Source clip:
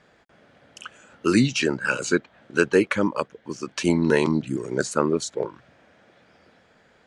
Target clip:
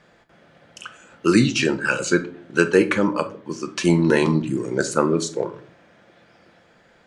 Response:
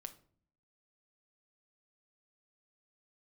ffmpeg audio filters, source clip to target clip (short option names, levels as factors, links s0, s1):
-filter_complex "[1:a]atrim=start_sample=2205[s0];[0:a][s0]afir=irnorm=-1:irlink=0,volume=2.37"